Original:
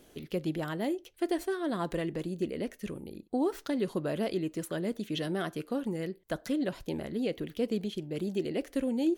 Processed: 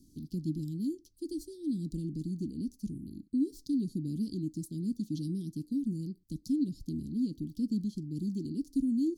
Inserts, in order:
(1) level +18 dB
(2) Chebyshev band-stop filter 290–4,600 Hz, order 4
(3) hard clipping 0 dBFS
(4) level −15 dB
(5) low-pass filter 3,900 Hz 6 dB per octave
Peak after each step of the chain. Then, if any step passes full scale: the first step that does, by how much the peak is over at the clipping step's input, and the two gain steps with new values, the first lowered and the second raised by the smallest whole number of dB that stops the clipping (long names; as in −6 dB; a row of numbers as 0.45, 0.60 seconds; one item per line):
−1.0, −6.0, −6.0, −21.0, −21.0 dBFS
no step passes full scale